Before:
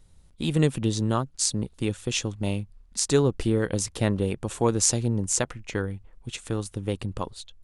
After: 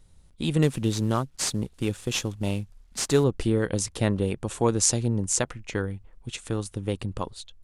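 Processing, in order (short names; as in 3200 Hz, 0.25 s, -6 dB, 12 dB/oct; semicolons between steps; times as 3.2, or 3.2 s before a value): 0.62–3.24 CVSD 64 kbps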